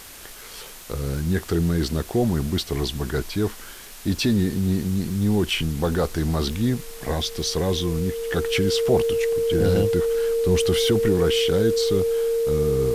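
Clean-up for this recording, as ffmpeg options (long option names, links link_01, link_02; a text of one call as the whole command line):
ffmpeg -i in.wav -af "adeclick=threshold=4,bandreject=frequency=460:width=30,afwtdn=0.0089" out.wav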